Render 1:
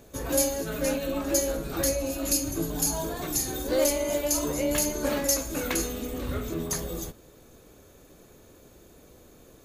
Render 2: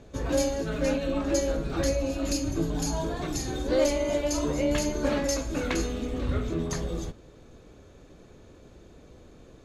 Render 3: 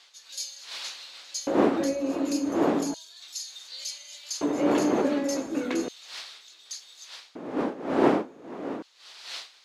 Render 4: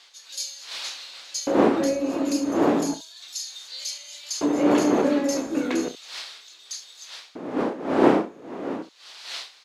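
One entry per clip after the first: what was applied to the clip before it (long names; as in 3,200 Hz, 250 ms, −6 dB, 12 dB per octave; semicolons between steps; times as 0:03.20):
low-pass filter 5,000 Hz 12 dB per octave; low-shelf EQ 210 Hz +5.5 dB
wind on the microphone 630 Hz −24 dBFS; auto-filter high-pass square 0.34 Hz 280–4,200 Hz; level −4 dB
ambience of single reflections 31 ms −10 dB, 68 ms −14.5 dB; level +3 dB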